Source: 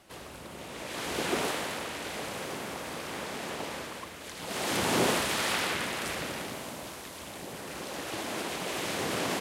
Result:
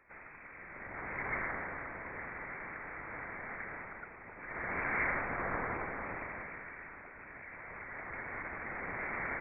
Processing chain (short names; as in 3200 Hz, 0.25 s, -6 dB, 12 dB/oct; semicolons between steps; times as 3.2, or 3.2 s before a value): 8.27–8.8 CVSD 16 kbps; low shelf 410 Hz -9.5 dB; inverted band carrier 2500 Hz; gain -3 dB